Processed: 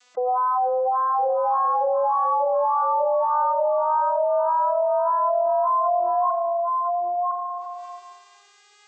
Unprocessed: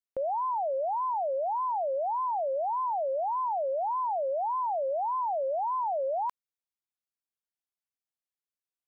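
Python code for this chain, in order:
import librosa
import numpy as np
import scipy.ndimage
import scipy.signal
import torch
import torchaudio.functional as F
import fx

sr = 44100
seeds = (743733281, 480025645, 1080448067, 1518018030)

y = fx.vocoder_glide(x, sr, note=59, semitones=9)
y = scipy.signal.sosfilt(scipy.signal.butter(2, 550.0, 'highpass', fs=sr, output='sos'), y)
y = fx.tilt_shelf(y, sr, db=-6.5, hz=1100.0)
y = fx.spec_gate(y, sr, threshold_db=-30, keep='strong')
y = fx.peak_eq(y, sr, hz=740.0, db=5.0, octaves=2.3)
y = y + 10.0 ** (-9.0 / 20.0) * np.pad(y, (int(1009 * sr / 1000.0), 0))[:len(y)]
y = fx.rev_schroeder(y, sr, rt60_s=1.1, comb_ms=30, drr_db=12.0)
y = fx.env_flatten(y, sr, amount_pct=70)
y = F.gain(torch.from_numpy(y), 5.0).numpy()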